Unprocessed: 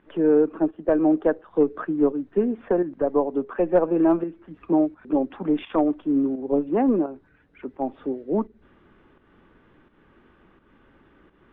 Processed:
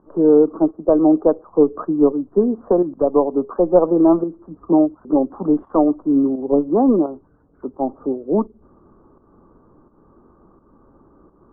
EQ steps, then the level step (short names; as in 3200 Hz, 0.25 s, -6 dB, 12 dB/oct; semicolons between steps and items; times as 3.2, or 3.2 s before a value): elliptic low-pass 1200 Hz, stop band 50 dB; +6.0 dB